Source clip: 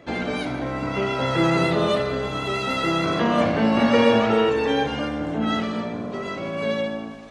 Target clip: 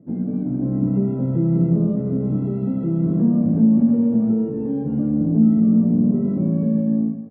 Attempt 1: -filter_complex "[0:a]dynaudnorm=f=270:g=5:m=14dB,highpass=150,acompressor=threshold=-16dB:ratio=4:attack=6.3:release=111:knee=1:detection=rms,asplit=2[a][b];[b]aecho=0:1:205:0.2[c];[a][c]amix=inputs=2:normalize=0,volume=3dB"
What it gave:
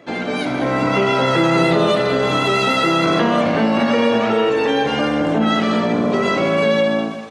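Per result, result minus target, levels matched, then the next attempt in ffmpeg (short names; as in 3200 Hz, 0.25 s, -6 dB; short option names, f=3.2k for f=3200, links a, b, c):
echo-to-direct +9.5 dB; 250 Hz band -5.0 dB
-filter_complex "[0:a]dynaudnorm=f=270:g=5:m=14dB,highpass=150,acompressor=threshold=-16dB:ratio=4:attack=6.3:release=111:knee=1:detection=rms,asplit=2[a][b];[b]aecho=0:1:205:0.0668[c];[a][c]amix=inputs=2:normalize=0,volume=3dB"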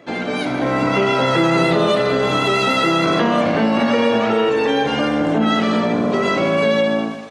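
250 Hz band -5.0 dB
-filter_complex "[0:a]dynaudnorm=f=270:g=5:m=14dB,highpass=150,acompressor=threshold=-16dB:ratio=4:attack=6.3:release=111:knee=1:detection=rms,lowpass=f=200:t=q:w=2.1,asplit=2[a][b];[b]aecho=0:1:205:0.0668[c];[a][c]amix=inputs=2:normalize=0,volume=3dB"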